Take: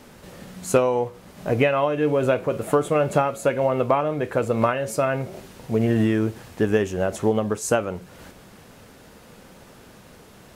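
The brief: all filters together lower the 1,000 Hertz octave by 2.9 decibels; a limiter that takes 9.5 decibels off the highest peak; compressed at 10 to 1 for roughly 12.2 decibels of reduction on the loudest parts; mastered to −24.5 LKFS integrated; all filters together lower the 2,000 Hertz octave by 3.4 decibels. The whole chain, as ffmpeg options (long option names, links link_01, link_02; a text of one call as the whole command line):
ffmpeg -i in.wav -af "equalizer=frequency=1000:width_type=o:gain=-3,equalizer=frequency=2000:width_type=o:gain=-3.5,acompressor=threshold=-27dB:ratio=10,volume=10dB,alimiter=limit=-14dB:level=0:latency=1" out.wav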